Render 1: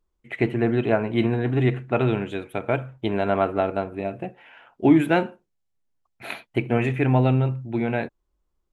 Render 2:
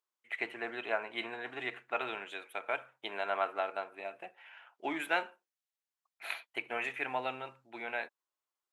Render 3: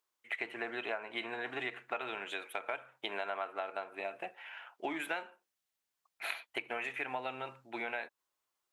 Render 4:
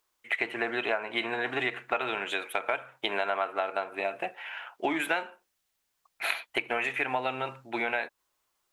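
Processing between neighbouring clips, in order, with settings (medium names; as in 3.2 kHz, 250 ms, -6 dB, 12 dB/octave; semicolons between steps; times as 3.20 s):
high-pass 950 Hz 12 dB/octave; trim -4.5 dB
compression 5:1, threshold -41 dBFS, peak gain reduction 14.5 dB; trim +6 dB
bass shelf 68 Hz +10 dB; trim +8.5 dB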